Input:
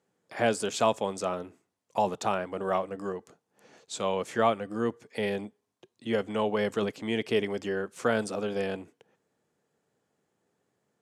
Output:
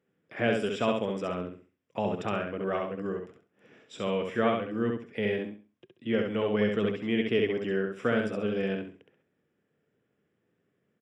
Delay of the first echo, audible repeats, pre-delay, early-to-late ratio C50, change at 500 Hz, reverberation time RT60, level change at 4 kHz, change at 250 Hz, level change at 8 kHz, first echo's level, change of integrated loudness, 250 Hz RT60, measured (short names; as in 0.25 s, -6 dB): 67 ms, 3, none, none, 0.0 dB, none, -1.5 dB, +3.0 dB, under -10 dB, -3.5 dB, 0.0 dB, none